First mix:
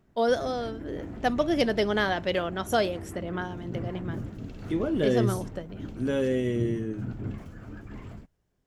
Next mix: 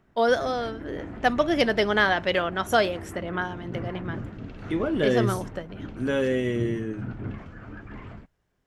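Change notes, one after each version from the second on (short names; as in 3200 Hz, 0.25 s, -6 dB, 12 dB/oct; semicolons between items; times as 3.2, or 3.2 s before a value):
background: add Bessel low-pass 3700 Hz, order 2; master: add bell 1600 Hz +7 dB 2.4 oct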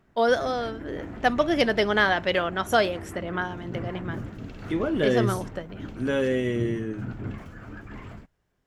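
background: remove Bessel low-pass 3700 Hz, order 2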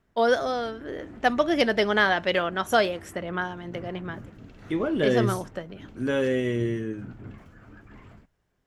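background -8.0 dB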